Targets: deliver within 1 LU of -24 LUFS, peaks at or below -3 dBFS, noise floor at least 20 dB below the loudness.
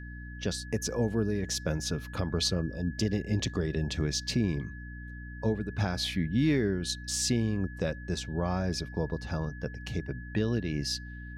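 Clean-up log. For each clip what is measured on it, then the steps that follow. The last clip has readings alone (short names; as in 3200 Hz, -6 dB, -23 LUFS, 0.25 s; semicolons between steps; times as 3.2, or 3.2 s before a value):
hum 60 Hz; harmonics up to 300 Hz; hum level -40 dBFS; steady tone 1700 Hz; tone level -47 dBFS; loudness -31.5 LUFS; peak -16.5 dBFS; loudness target -24.0 LUFS
-> de-hum 60 Hz, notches 5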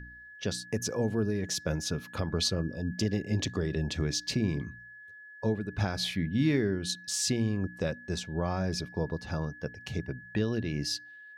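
hum none; steady tone 1700 Hz; tone level -47 dBFS
-> notch 1700 Hz, Q 30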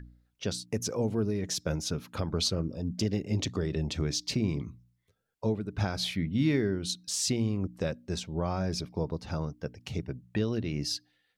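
steady tone none; loudness -32.0 LUFS; peak -16.0 dBFS; loudness target -24.0 LUFS
-> gain +8 dB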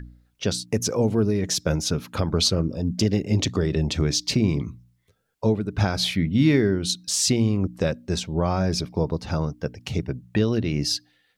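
loudness -24.0 LUFS; peak -8.0 dBFS; noise floor -67 dBFS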